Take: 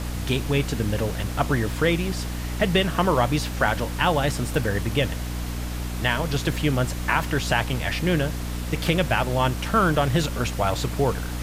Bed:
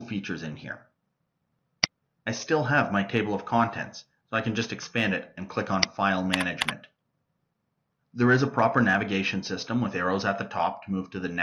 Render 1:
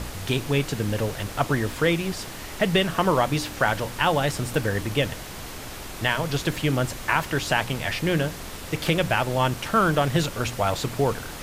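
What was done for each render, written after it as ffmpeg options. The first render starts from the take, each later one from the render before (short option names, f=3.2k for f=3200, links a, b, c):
-af "bandreject=f=60:t=h:w=4,bandreject=f=120:t=h:w=4,bandreject=f=180:t=h:w=4,bandreject=f=240:t=h:w=4,bandreject=f=300:t=h:w=4"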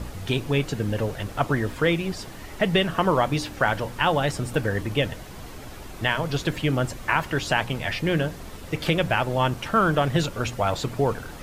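-af "afftdn=nr=8:nf=-37"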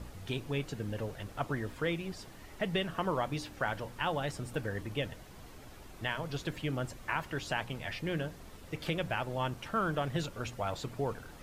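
-af "volume=-11.5dB"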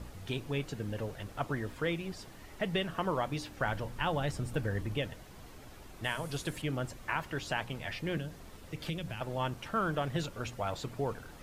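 -filter_complex "[0:a]asettb=1/sr,asplit=3[a][b][c];[a]atrim=end=3.594[d];[b]atrim=start=3.59:end=4.98,asetpts=PTS-STARTPTS,afade=t=in:d=0.004:c=qsin,afade=t=out:st=1.386:d=0.004:c=qsin,lowshelf=f=150:g=8[e];[c]atrim=start=4.976[f];[d][e]acrossfade=d=0.004:c1=hsin:c2=qsin[g];[g][f]acrossfade=d=0.004:c1=qsin:c2=hsin,asettb=1/sr,asplit=3[h][i][j];[h]atrim=end=6.044[k];[i]atrim=start=6.04:end=6.62,asetpts=PTS-STARTPTS,afade=t=in:d=0.004:c=qsin,afade=t=out:st=0.576:d=0.004:c=qsin,equalizer=f=9.7k:t=o:w=0.82:g=13.5[l];[j]atrim=start=6.616[m];[k][l]acrossfade=d=0.004:c1=hsin:c2=qsin[n];[n][m]acrossfade=d=0.004:c1=qsin:c2=hsin,asettb=1/sr,asplit=3[o][p][q];[o]atrim=end=8.174[r];[p]atrim=start=8.17:end=9.21,asetpts=PTS-STARTPTS,afade=t=in:d=0.004:c=qsin,afade=t=out:st=1.036:d=0.004:c=qsin,acrossover=split=280|3000[s][t][u];[t]acompressor=threshold=-44dB:ratio=6:attack=3.2:release=140:knee=2.83:detection=peak[v];[s][v][u]amix=inputs=3:normalize=0[w];[q]atrim=start=9.206[x];[r][w]acrossfade=d=0.004:c1=hsin:c2=qsin[y];[y][x]acrossfade=d=0.004:c1=qsin:c2=hsin"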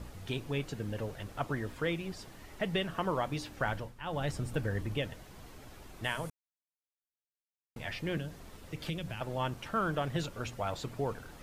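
-filter_complex "[0:a]asplit=5[a][b][c][d][e];[a]atrim=end=3.95,asetpts=PTS-STARTPTS,afade=t=out:st=3.64:d=0.31:c=qsin:silence=0.266073[f];[b]atrim=start=3.95:end=4.02,asetpts=PTS-STARTPTS,volume=-11.5dB[g];[c]atrim=start=4.02:end=6.3,asetpts=PTS-STARTPTS,afade=t=in:d=0.31:c=qsin:silence=0.266073,afade=t=out:st=2.276:d=0.004:c=hsin[h];[d]atrim=start=6.3:end=7.76,asetpts=PTS-STARTPTS,volume=0[i];[e]atrim=start=7.76,asetpts=PTS-STARTPTS,afade=t=in:d=0.004:c=hsin[j];[f][g][h][i][j]concat=n=5:v=0:a=1"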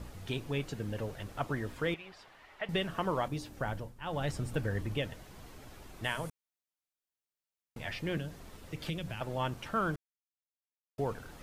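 -filter_complex "[0:a]asettb=1/sr,asplit=3[a][b][c];[a]atrim=end=1.944[d];[b]atrim=start=1.94:end=2.69,asetpts=PTS-STARTPTS,afade=t=in:d=0.004:c=qsin,afade=t=out:st=0.746:d=0.004:c=qsin,acrossover=split=580 3800:gain=0.141 1 0.158[e][f][g];[e][f][g]amix=inputs=3:normalize=0[h];[c]atrim=start=2.686[i];[d][h]acrossfade=d=0.004:c1=hsin:c2=qsin[j];[j][i]acrossfade=d=0.004:c1=qsin:c2=hsin,asettb=1/sr,asplit=3[k][l][m];[k]atrim=end=3.284[n];[l]atrim=start=3.28:end=4.02,asetpts=PTS-STARTPTS,afade=t=in:d=0.004:c=qsin,afade=t=out:st=0.736:d=0.004:c=qsin,equalizer=f=2.2k:w=0.42:g=-6.5[o];[m]atrim=start=4.016[p];[n][o]acrossfade=d=0.004:c1=hsin:c2=qsin[q];[q][p]acrossfade=d=0.004:c1=qsin:c2=hsin,asplit=3[r][s][t];[r]atrim=end=9.96,asetpts=PTS-STARTPTS,afade=t=out:st=9.956:d=0.004:c=hsin[u];[s]atrim=start=9.96:end=10.98,asetpts=PTS-STARTPTS,volume=0[v];[t]atrim=start=10.98,asetpts=PTS-STARTPTS,afade=t=in:d=0.004:c=hsin[w];[u][v][w]concat=n=3:v=0:a=1"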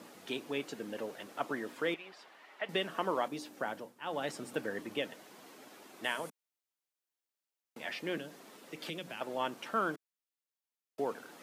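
-af "highpass=f=230:w=0.5412,highpass=f=230:w=1.3066"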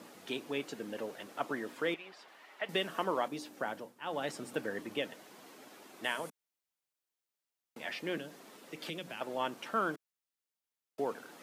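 -filter_complex "[0:a]asettb=1/sr,asplit=3[a][b][c];[a]atrim=end=2.284[d];[b]atrim=start=2.28:end=3.04,asetpts=PTS-STARTPTS,afade=t=in:d=0.004:c=qsin,afade=t=out:st=0.756:d=0.004:c=qsin,highshelf=f=5.7k:g=5[e];[c]atrim=start=3.036[f];[d][e]acrossfade=d=0.004:c1=hsin:c2=qsin[g];[g][f]acrossfade=d=0.004:c1=qsin:c2=hsin"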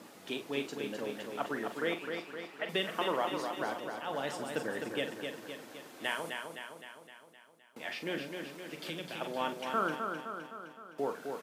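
-filter_complex "[0:a]asplit=2[a][b];[b]adelay=43,volume=-9.5dB[c];[a][c]amix=inputs=2:normalize=0,asplit=2[d][e];[e]aecho=0:1:258|516|774|1032|1290|1548|1806|2064:0.531|0.308|0.179|0.104|0.0601|0.0348|0.0202|0.0117[f];[d][f]amix=inputs=2:normalize=0"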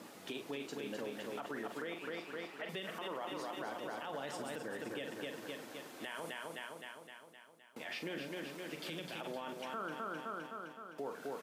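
-af "acompressor=threshold=-39dB:ratio=2,alimiter=level_in=8.5dB:limit=-24dB:level=0:latency=1:release=36,volume=-8.5dB"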